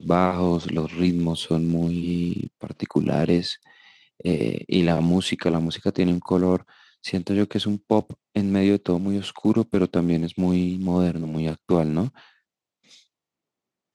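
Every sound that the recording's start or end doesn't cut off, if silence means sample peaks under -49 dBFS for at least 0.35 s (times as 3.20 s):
12.87–13.01 s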